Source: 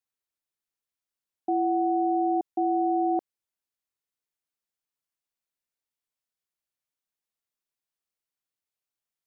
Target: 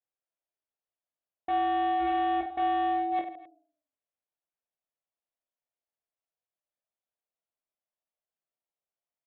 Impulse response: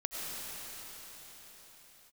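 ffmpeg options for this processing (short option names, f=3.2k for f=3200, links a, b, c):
-af "aemphasis=mode=reproduction:type=50kf,flanger=delay=7.4:depth=3.6:regen=-90:speed=0.33:shape=sinusoidal,equalizer=f=640:t=o:w=0.89:g=12,bandreject=f=206.1:t=h:w=4,bandreject=f=412.2:t=h:w=4,bandreject=f=618.3:t=h:w=4,bandreject=f=824.4:t=h:w=4,bandreject=f=1.0305k:t=h:w=4,bandreject=f=1.2366k:t=h:w=4,bandreject=f=1.4427k:t=h:w=4,bandreject=f=1.6488k:t=h:w=4,bandreject=f=1.8549k:t=h:w=4,bandreject=f=2.061k:t=h:w=4,bandreject=f=2.2671k:t=h:w=4,bandreject=f=2.4732k:t=h:w=4,bandreject=f=2.6793k:t=h:w=4,bandreject=f=2.8854k:t=h:w=4,bandreject=f=3.0915k:t=h:w=4,bandreject=f=3.2976k:t=h:w=4,bandreject=f=3.5037k:t=h:w=4,bandreject=f=3.7098k:t=h:w=4,bandreject=f=3.9159k:t=h:w=4,bandreject=f=4.122k:t=h:w=4,bandreject=f=4.3281k:t=h:w=4,bandreject=f=4.5342k:t=h:w=4,bandreject=f=4.7403k:t=h:w=4,bandreject=f=4.9464k:t=h:w=4,bandreject=f=5.1525k:t=h:w=4,bandreject=f=5.3586k:t=h:w=4,bandreject=f=5.5647k:t=h:w=4,bandreject=f=5.7708k:t=h:w=4,bandreject=f=5.9769k:t=h:w=4,bandreject=f=6.183k:t=h:w=4,bandreject=f=6.3891k:t=h:w=4,aresample=8000,asoftclip=type=hard:threshold=-24dB,aresample=44100,aecho=1:1:20|50|95|162.5|263.8:0.631|0.398|0.251|0.158|0.1,volume=-4dB"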